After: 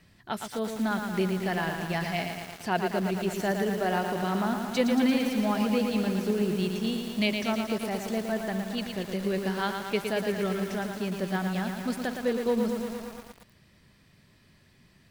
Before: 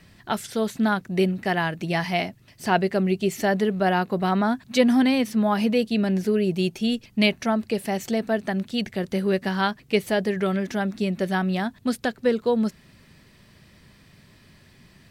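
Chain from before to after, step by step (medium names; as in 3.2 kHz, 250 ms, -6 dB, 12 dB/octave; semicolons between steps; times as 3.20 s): bit-crushed delay 114 ms, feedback 80%, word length 6-bit, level -5 dB; trim -7 dB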